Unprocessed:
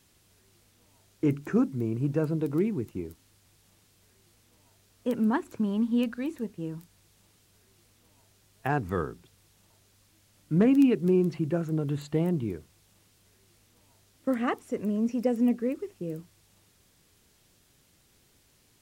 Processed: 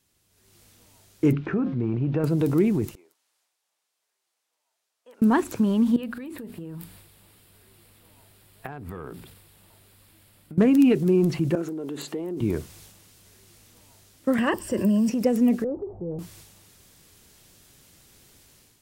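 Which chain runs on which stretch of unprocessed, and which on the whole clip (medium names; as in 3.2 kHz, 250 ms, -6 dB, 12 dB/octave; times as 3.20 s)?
1.32–2.24 s: low-pass 3.5 kHz 24 dB/octave + de-hum 177.8 Hz, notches 27 + compression 5:1, threshold -25 dBFS
2.95–5.22 s: band-pass filter 730 Hz, Q 1.3 + differentiator
5.96–10.58 s: peaking EQ 6.2 kHz -14.5 dB 0.52 oct + compression 16:1, threshold -39 dBFS + hum notches 60/120/180/240/300 Hz
11.55–12.41 s: peaking EQ 380 Hz +9 dB 0.78 oct + compression, threshold -33 dBFS + high-pass 210 Hz 24 dB/octave
14.38–15.10 s: rippled EQ curve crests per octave 1.3, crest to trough 12 dB + three bands compressed up and down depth 70%
15.64–16.19 s: jump at every zero crossing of -44.5 dBFS + Chebyshev low-pass 780 Hz, order 4 + peaking EQ 250 Hz -11 dB 0.92 oct
whole clip: treble shelf 6.3 kHz +4 dB; level rider gain up to 15.5 dB; transient shaper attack +1 dB, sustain +7 dB; trim -8.5 dB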